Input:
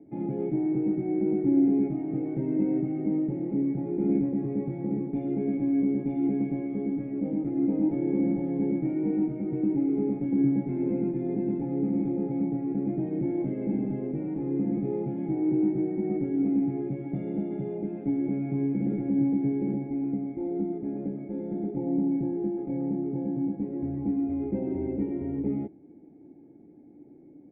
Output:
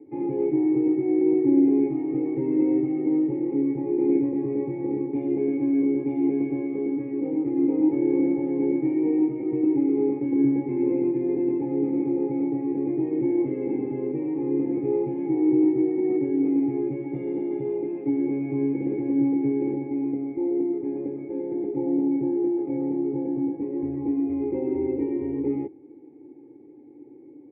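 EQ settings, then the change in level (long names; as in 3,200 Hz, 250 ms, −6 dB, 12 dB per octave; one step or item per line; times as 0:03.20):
high-pass filter 140 Hz 12 dB per octave
high-frequency loss of the air 210 metres
phaser with its sweep stopped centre 980 Hz, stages 8
+8.0 dB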